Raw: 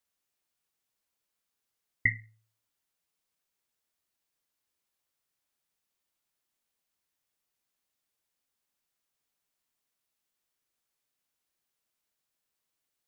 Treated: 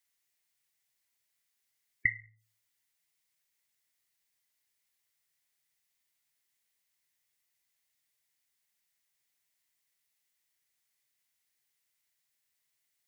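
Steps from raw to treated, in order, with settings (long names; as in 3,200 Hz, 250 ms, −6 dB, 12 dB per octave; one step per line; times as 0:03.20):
high-shelf EQ 2,000 Hz +9 dB
gate on every frequency bin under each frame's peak −30 dB strong
downward compressor 4 to 1, threshold −30 dBFS, peak gain reduction 12.5 dB
thirty-one-band graphic EQ 125 Hz +7 dB, 250 Hz −4 dB, 500 Hz −3 dB, 1,250 Hz −3 dB, 2,000 Hz +9 dB
level −4.5 dB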